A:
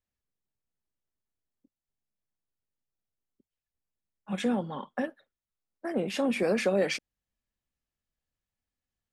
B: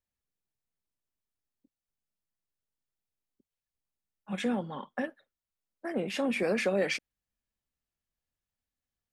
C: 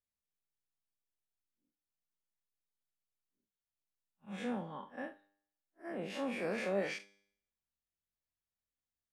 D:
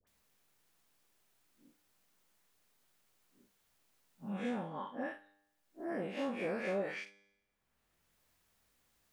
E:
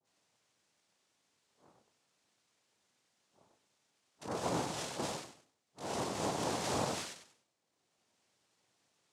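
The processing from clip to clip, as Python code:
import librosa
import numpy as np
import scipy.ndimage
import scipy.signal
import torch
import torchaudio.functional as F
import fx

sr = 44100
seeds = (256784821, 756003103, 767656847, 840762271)

y1 = fx.dynamic_eq(x, sr, hz=2100.0, q=1.4, threshold_db=-48.0, ratio=4.0, max_db=4)
y1 = F.gain(torch.from_numpy(y1), -2.5).numpy()
y2 = fx.spec_blur(y1, sr, span_ms=92.0)
y2 = fx.comb_fb(y2, sr, f0_hz=100.0, decay_s=0.67, harmonics='all', damping=0.0, mix_pct=50)
y2 = fx.dynamic_eq(y2, sr, hz=1000.0, q=0.83, threshold_db=-51.0, ratio=4.0, max_db=5)
y2 = F.gain(torch.from_numpy(y2), -1.5).numpy()
y3 = fx.dispersion(y2, sr, late='highs', ms=72.0, hz=1100.0)
y3 = fx.band_squash(y3, sr, depth_pct=70)
y3 = F.gain(torch.from_numpy(y3), 1.0).numpy()
y4 = fx.rattle_buzz(y3, sr, strikes_db=-57.0, level_db=-35.0)
y4 = fx.echo_feedback(y4, sr, ms=96, feedback_pct=30, wet_db=-4.0)
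y4 = fx.noise_vocoder(y4, sr, seeds[0], bands=2)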